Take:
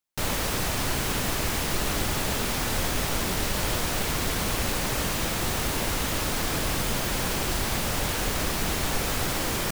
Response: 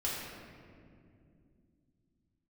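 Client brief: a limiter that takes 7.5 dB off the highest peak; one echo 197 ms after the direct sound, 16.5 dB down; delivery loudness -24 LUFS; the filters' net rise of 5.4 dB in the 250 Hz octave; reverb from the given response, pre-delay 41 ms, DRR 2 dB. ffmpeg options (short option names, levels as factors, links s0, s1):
-filter_complex "[0:a]equalizer=f=250:t=o:g=7,alimiter=limit=0.1:level=0:latency=1,aecho=1:1:197:0.15,asplit=2[s0][s1];[1:a]atrim=start_sample=2205,adelay=41[s2];[s1][s2]afir=irnorm=-1:irlink=0,volume=0.447[s3];[s0][s3]amix=inputs=2:normalize=0,volume=1.41"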